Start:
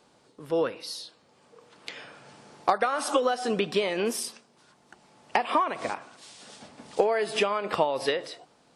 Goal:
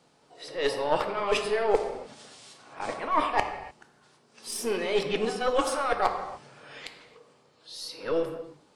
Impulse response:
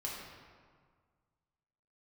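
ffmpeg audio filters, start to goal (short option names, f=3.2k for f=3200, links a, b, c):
-filter_complex "[0:a]areverse,aeval=exprs='0.376*(cos(1*acos(clip(val(0)/0.376,-1,1)))-cos(1*PI/2))+0.0473*(cos(4*acos(clip(val(0)/0.376,-1,1)))-cos(4*PI/2))':c=same,asplit=2[a][b];[1:a]atrim=start_sample=2205,afade=t=out:st=0.36:d=0.01,atrim=end_sample=16317[c];[b][c]afir=irnorm=-1:irlink=0,volume=-1.5dB[d];[a][d]amix=inputs=2:normalize=0,volume=-5.5dB"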